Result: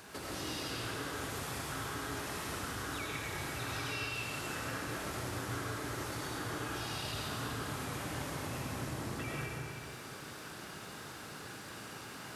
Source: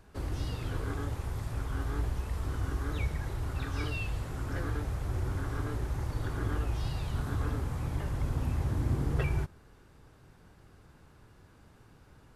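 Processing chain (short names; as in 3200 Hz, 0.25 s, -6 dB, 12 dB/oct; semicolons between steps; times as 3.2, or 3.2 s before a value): HPF 160 Hz 12 dB/oct; tilt shelf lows -5.5 dB, about 1400 Hz; compressor, threshold -54 dBFS, peak gain reduction 19.5 dB; reverb RT60 2.3 s, pre-delay 60 ms, DRR -4.5 dB; gain +11 dB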